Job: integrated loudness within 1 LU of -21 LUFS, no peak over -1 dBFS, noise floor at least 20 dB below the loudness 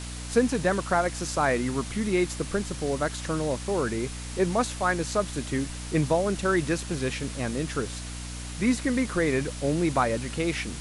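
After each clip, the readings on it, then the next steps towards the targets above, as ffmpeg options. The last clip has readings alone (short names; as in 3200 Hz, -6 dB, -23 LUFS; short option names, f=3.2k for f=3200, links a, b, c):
hum 60 Hz; harmonics up to 300 Hz; hum level -35 dBFS; noise floor -37 dBFS; noise floor target -48 dBFS; loudness -27.5 LUFS; peak -8.5 dBFS; loudness target -21.0 LUFS
-> -af "bandreject=f=60:t=h:w=6,bandreject=f=120:t=h:w=6,bandreject=f=180:t=h:w=6,bandreject=f=240:t=h:w=6,bandreject=f=300:t=h:w=6"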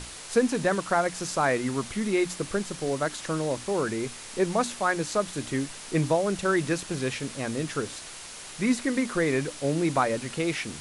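hum none; noise floor -42 dBFS; noise floor target -48 dBFS
-> -af "afftdn=nr=6:nf=-42"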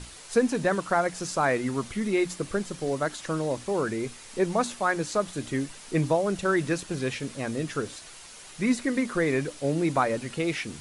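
noise floor -46 dBFS; noise floor target -48 dBFS
-> -af "afftdn=nr=6:nf=-46"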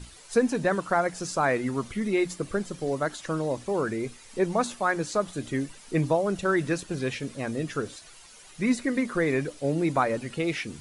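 noise floor -50 dBFS; loudness -28.0 LUFS; peak -9.5 dBFS; loudness target -21.0 LUFS
-> -af "volume=7dB"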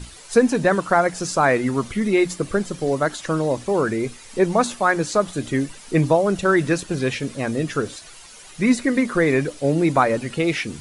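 loudness -21.0 LUFS; peak -2.5 dBFS; noise floor -43 dBFS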